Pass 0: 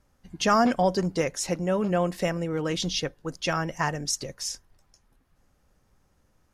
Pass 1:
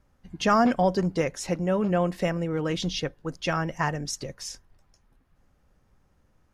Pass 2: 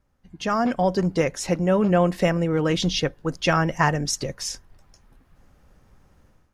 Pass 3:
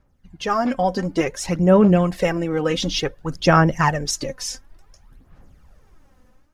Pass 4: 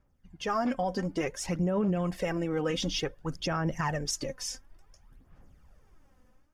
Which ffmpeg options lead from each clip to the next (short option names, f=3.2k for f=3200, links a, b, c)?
-af "bass=f=250:g=2,treble=f=4k:g=-6"
-af "dynaudnorm=f=570:g=3:m=13dB,volume=-4dB"
-af "aphaser=in_gain=1:out_gain=1:delay=4:decay=0.56:speed=0.56:type=sinusoidal"
-af "bandreject=f=4k:w=11,alimiter=limit=-13dB:level=0:latency=1:release=33,volume=-7.5dB"